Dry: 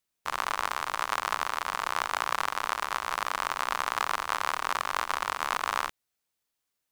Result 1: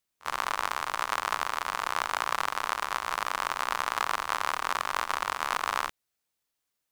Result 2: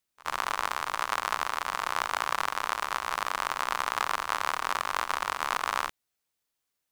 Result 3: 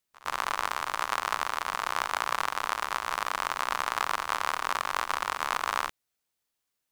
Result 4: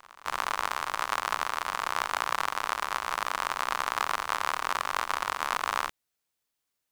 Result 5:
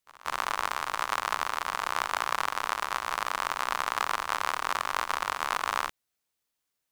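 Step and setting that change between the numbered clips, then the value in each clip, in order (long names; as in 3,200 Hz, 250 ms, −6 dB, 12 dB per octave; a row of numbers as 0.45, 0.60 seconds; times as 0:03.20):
echo ahead of the sound, delay time: 50, 76, 115, 293, 188 milliseconds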